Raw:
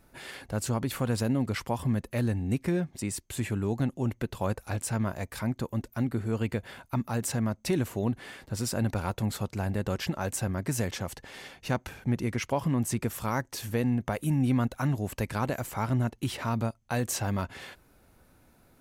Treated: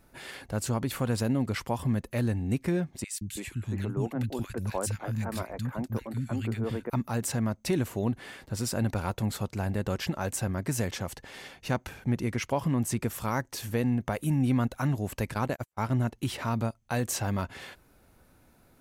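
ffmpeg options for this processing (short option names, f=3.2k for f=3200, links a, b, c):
-filter_complex "[0:a]asettb=1/sr,asplit=3[a][b][c];[a]atrim=end=3.044[d];[b]atrim=start=3.04:end=6.9,asetpts=PTS-STARTPTS,afade=t=in:d=0.004:c=qsin,afade=t=out:st=3.856:d=0.004:c=qsin,acrossover=split=230|1700[e][f][g];[e]adelay=170[h];[f]adelay=330[i];[h][i][g]amix=inputs=3:normalize=0,atrim=end_sample=170226[j];[c]atrim=start=6.896[k];[d][j]acrossfade=d=0.004:c1=hsin:c2=qsin[l];[l][k]acrossfade=d=0.004:c1=qsin:c2=hsin,asplit=3[m][n][o];[m]afade=t=out:st=15.33:d=0.02[p];[n]agate=range=-47dB:threshold=-33dB:ratio=16:release=100:detection=peak,afade=t=in:st=15.33:d=0.02,afade=t=out:st=16.02:d=0.02[q];[o]afade=t=in:st=16.02:d=0.02[r];[p][q][r]amix=inputs=3:normalize=0"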